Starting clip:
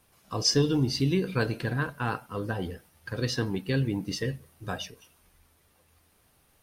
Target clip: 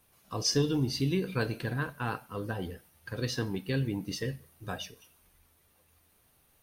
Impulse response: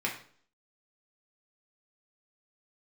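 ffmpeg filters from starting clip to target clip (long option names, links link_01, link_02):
-filter_complex "[0:a]asplit=2[link_01][link_02];[link_02]aderivative[link_03];[1:a]atrim=start_sample=2205,highshelf=frequency=7400:gain=9[link_04];[link_03][link_04]afir=irnorm=-1:irlink=0,volume=-11dB[link_05];[link_01][link_05]amix=inputs=2:normalize=0,volume=-3.5dB"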